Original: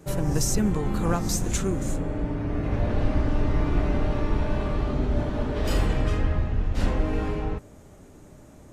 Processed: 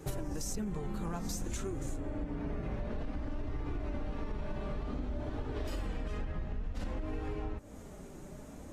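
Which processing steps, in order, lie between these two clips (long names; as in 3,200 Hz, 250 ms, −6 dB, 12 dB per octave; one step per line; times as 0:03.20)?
flanger 0.55 Hz, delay 2.3 ms, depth 3.2 ms, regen −39%
brickwall limiter −19.5 dBFS, peak gain reduction 6 dB
downward compressor 8 to 1, threshold −38 dBFS, peak gain reduction 15 dB
level +4.5 dB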